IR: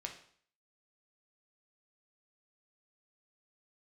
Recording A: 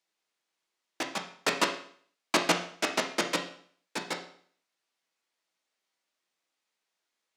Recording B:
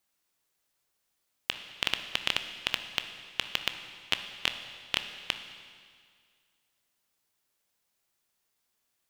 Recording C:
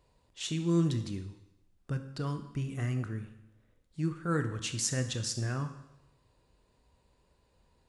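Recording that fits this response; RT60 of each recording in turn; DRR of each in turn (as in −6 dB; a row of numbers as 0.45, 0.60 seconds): A; 0.55, 2.0, 0.90 seconds; 1.5, 7.5, 8.0 decibels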